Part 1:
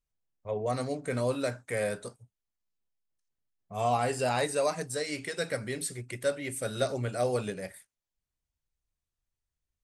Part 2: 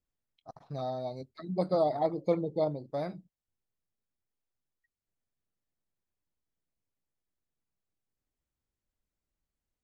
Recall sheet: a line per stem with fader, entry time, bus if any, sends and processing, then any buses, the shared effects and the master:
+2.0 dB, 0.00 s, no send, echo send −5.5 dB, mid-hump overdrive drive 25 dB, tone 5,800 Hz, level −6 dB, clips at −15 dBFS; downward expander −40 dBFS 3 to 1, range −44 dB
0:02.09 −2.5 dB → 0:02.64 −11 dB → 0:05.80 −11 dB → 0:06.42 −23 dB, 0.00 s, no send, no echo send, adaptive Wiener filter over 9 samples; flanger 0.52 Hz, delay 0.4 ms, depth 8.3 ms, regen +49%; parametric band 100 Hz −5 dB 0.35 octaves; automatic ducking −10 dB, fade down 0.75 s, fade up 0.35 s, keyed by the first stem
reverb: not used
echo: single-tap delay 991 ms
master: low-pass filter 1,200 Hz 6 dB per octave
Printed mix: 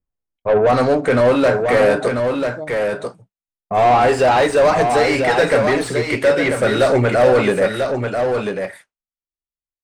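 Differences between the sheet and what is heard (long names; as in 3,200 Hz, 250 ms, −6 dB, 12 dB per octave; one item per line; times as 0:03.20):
stem 1 +2.0 dB → +10.5 dB
stem 2 −2.5 dB → +9.0 dB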